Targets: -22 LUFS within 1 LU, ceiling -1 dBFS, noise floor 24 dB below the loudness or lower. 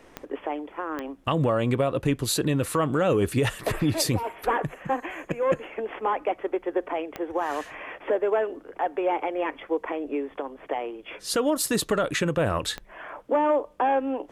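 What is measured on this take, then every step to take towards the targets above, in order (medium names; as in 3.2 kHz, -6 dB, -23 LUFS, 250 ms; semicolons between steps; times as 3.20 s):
clicks found 4; loudness -27.0 LUFS; peak level -12.5 dBFS; loudness target -22.0 LUFS
-> de-click; trim +5 dB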